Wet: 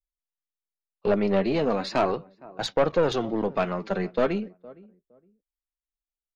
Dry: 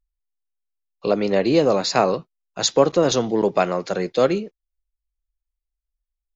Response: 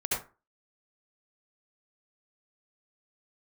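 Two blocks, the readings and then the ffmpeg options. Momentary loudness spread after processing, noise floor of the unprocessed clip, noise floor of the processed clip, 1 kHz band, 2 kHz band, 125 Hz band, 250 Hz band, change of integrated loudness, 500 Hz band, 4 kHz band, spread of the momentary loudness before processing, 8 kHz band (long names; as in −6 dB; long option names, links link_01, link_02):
9 LU, −84 dBFS, below −85 dBFS, −5.5 dB, −4.0 dB, −4.0 dB, −4.5 dB, −5.5 dB, −6.0 dB, −9.5 dB, 10 LU, can't be measured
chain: -filter_complex "[0:a]lowpass=2700,agate=range=-17dB:threshold=-32dB:ratio=16:detection=peak,adynamicequalizer=threshold=0.0355:dfrequency=520:dqfactor=0.77:tfrequency=520:tqfactor=0.77:attack=5:release=100:ratio=0.375:range=3.5:mode=cutabove:tftype=bell,flanger=delay=1.3:depth=3.8:regen=39:speed=0.38:shape=sinusoidal,asplit=2[link_01][link_02];[link_02]adelay=463,lowpass=frequency=850:poles=1,volume=-22dB,asplit=2[link_03][link_04];[link_04]adelay=463,lowpass=frequency=850:poles=1,volume=0.24[link_05];[link_01][link_03][link_05]amix=inputs=3:normalize=0,aeval=exprs='(tanh(7.94*val(0)+0.4)-tanh(0.4))/7.94':channel_layout=same,volume=3.5dB"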